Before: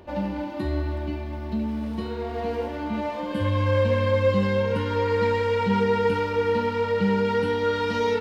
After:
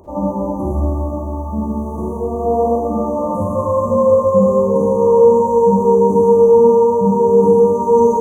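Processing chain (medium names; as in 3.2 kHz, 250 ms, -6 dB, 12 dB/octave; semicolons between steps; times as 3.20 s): FFT band-reject 1.2–5.9 kHz; Schroeder reverb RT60 1.8 s, DRR -6.5 dB; trim +4 dB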